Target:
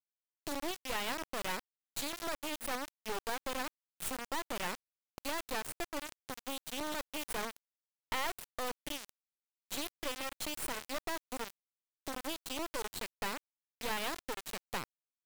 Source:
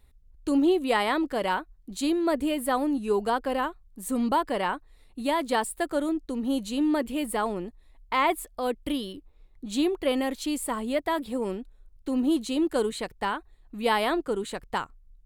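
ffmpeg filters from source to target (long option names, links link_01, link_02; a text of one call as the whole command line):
ffmpeg -i in.wav -af "acompressor=threshold=-41dB:ratio=3,highpass=frequency=670:poles=1,acrusher=bits=4:dc=4:mix=0:aa=0.000001,volume=6.5dB" out.wav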